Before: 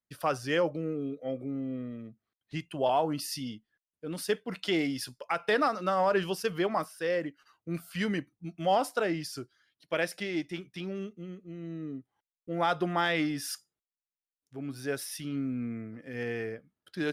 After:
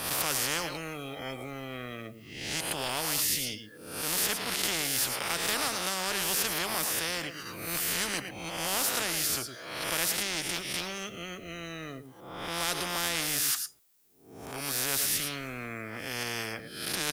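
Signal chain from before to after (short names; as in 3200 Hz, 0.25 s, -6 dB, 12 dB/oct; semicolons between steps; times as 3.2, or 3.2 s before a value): spectral swells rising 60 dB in 0.50 s; high shelf 7400 Hz +11.5 dB; on a send: echo 0.111 s -20.5 dB; on the sum: spectral compressor 4:1; gain +2.5 dB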